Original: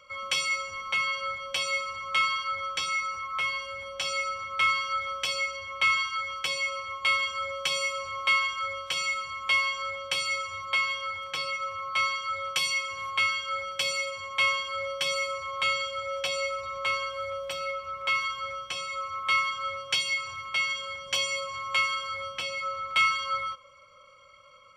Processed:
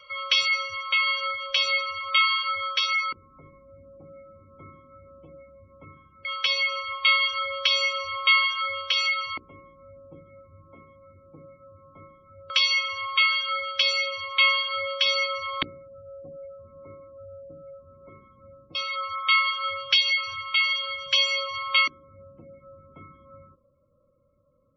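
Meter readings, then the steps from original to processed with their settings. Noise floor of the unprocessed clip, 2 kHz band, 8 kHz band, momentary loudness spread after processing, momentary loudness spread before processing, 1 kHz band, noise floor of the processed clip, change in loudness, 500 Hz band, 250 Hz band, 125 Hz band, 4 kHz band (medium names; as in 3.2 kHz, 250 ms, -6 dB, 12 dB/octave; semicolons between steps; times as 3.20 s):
-53 dBFS, +2.0 dB, -5.5 dB, 10 LU, 8 LU, -0.5 dB, -60 dBFS, +5.0 dB, -1.0 dB, no reading, +1.0 dB, +6.0 dB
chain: LFO low-pass square 0.16 Hz 290–4000 Hz; spectral gate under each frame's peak -25 dB strong; hum notches 60/120/180/240/300/360/420/480/540 Hz; trim +2 dB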